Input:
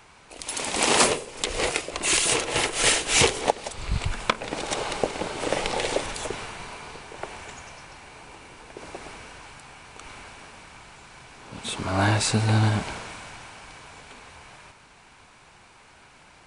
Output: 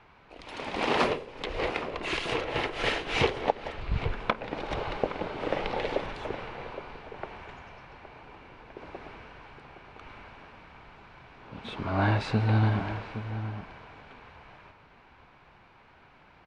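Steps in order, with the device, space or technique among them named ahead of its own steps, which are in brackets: shout across a valley (air absorption 310 m; outdoor echo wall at 140 m, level -11 dB); gain -2.5 dB

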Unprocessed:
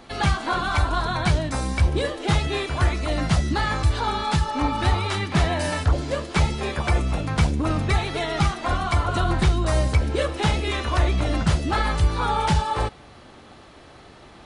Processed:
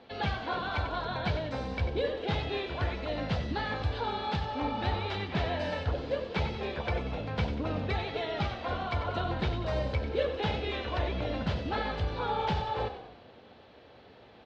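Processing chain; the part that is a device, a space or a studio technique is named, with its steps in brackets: frequency-shifting delay pedal into a guitar cabinet (frequency-shifting echo 93 ms, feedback 53%, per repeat -37 Hz, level -10 dB; speaker cabinet 84–4200 Hz, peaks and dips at 150 Hz -6 dB, 330 Hz -5 dB, 480 Hz +7 dB, 1200 Hz -7 dB, 2000 Hz -3 dB); gain -7.5 dB

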